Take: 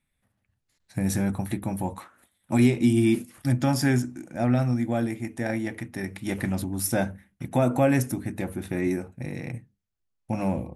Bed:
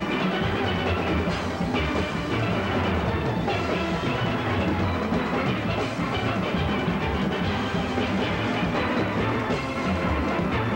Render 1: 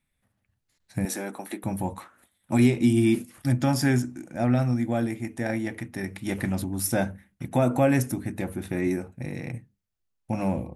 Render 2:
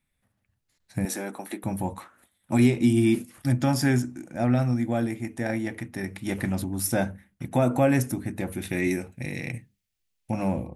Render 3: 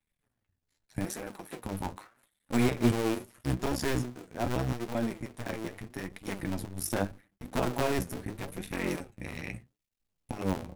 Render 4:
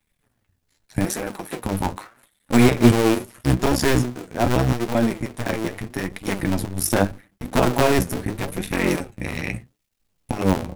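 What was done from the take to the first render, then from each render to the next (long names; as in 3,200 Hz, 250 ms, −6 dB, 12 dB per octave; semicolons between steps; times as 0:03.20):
0:01.05–0:01.64: high-pass filter 290 Hz 24 dB per octave
0:08.52–0:10.31: high shelf with overshoot 1,700 Hz +6.5 dB, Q 1.5
sub-harmonics by changed cycles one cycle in 2, muted; flanger 0.8 Hz, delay 3.4 ms, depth 8.9 ms, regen +46%
level +11.5 dB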